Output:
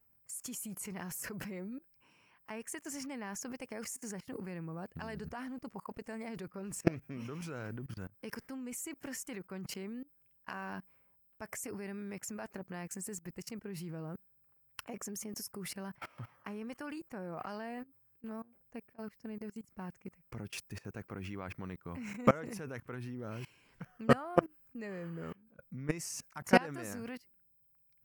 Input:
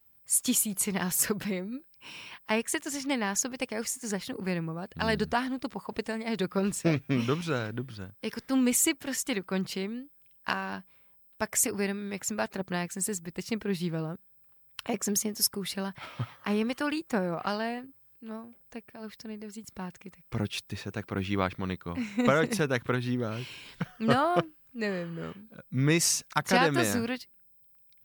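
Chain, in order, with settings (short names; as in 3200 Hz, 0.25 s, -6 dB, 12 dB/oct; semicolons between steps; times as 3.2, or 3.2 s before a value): bell 3700 Hz -14.5 dB 0.5 oct; level quantiser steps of 22 dB; mismatched tape noise reduction decoder only; gain +2 dB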